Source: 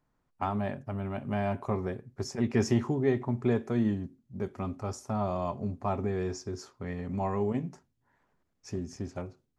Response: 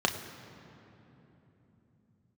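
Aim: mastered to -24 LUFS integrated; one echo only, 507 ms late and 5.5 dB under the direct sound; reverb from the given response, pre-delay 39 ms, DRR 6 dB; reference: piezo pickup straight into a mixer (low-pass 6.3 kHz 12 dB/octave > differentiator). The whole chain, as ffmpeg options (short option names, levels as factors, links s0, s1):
-filter_complex "[0:a]aecho=1:1:507:0.531,asplit=2[s0][s1];[1:a]atrim=start_sample=2205,adelay=39[s2];[s1][s2]afir=irnorm=-1:irlink=0,volume=0.141[s3];[s0][s3]amix=inputs=2:normalize=0,lowpass=6300,aderivative,volume=23.7"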